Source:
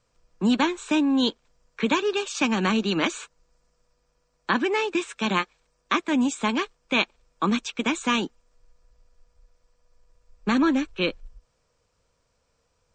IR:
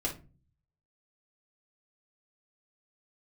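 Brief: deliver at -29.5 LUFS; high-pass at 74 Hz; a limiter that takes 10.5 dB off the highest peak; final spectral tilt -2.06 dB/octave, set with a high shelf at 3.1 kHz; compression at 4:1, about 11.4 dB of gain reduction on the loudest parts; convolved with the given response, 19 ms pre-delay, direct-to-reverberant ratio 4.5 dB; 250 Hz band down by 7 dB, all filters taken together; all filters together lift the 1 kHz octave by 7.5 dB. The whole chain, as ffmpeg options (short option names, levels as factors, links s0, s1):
-filter_complex "[0:a]highpass=74,equalizer=f=250:t=o:g=-9,equalizer=f=1000:t=o:g=8,highshelf=f=3100:g=9,acompressor=threshold=0.0447:ratio=4,alimiter=limit=0.1:level=0:latency=1,asplit=2[s0][s1];[1:a]atrim=start_sample=2205,adelay=19[s2];[s1][s2]afir=irnorm=-1:irlink=0,volume=0.376[s3];[s0][s3]amix=inputs=2:normalize=0,volume=1.19"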